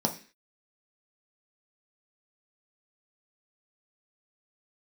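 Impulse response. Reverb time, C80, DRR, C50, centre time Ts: no single decay rate, 18.0 dB, 2.0 dB, 12.5 dB, 11 ms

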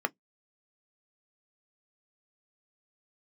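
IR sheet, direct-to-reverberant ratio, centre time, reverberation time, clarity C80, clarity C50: 9.0 dB, 2 ms, no single decay rate, 51.5 dB, 39.5 dB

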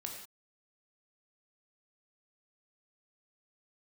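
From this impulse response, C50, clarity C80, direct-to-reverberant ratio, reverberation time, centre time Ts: 4.0 dB, 6.5 dB, 0.5 dB, no single decay rate, 35 ms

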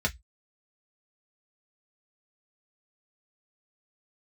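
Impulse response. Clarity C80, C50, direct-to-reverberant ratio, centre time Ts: 37.5 dB, 24.5 dB, -1.0 dB, 7 ms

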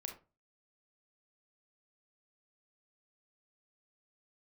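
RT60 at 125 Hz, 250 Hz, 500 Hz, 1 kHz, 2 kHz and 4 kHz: 0.40 s, 0.35 s, 0.30 s, 0.30 s, 0.25 s, 0.20 s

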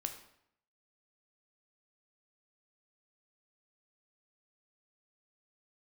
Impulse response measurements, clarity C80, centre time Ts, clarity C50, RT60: 12.0 dB, 15 ms, 9.0 dB, 0.70 s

